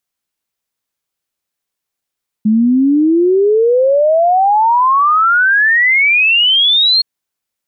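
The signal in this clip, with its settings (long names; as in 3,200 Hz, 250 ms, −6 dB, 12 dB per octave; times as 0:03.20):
exponential sine sweep 210 Hz → 4,300 Hz 4.57 s −7.5 dBFS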